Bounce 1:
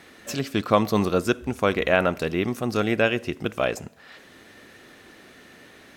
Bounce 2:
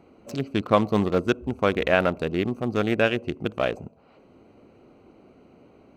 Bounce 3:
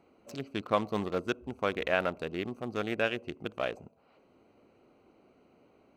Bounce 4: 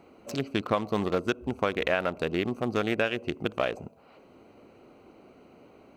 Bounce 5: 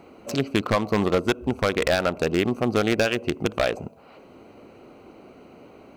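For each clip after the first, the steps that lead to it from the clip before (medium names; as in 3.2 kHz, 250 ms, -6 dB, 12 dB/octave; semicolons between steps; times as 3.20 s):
local Wiener filter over 25 samples
bass shelf 350 Hz -7 dB; trim -6.5 dB
compression 4:1, threshold -32 dBFS, peak gain reduction 10 dB; trim +9 dB
wavefolder -18 dBFS; trim +6.5 dB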